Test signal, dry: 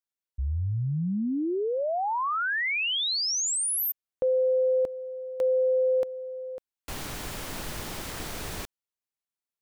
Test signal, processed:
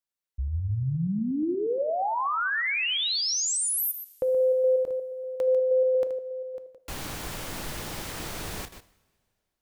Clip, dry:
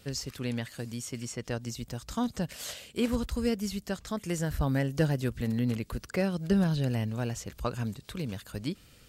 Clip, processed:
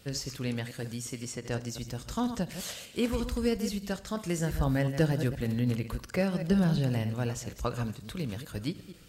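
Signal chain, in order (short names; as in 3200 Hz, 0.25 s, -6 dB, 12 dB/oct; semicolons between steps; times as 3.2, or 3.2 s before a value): reverse delay 0.119 s, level -10 dB; two-slope reverb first 0.68 s, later 2.5 s, from -19 dB, DRR 13.5 dB; ending taper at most 350 dB/s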